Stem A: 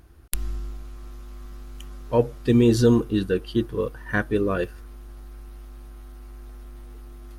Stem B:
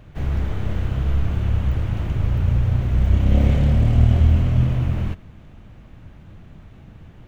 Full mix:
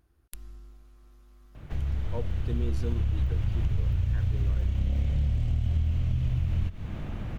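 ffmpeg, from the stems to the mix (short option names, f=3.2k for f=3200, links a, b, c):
-filter_complex "[0:a]volume=-15.5dB[a];[1:a]acrossover=split=110|2600[b][c][d];[b]acompressor=threshold=-24dB:ratio=4[e];[c]acompressor=threshold=-43dB:ratio=4[f];[d]acompressor=threshold=-54dB:ratio=4[g];[e][f][g]amix=inputs=3:normalize=0,highshelf=f=5.2k:g=-5,dynaudnorm=f=540:g=5:m=10.5dB,adelay=1550,volume=-1dB[h];[a][h]amix=inputs=2:normalize=0,acompressor=threshold=-23dB:ratio=6"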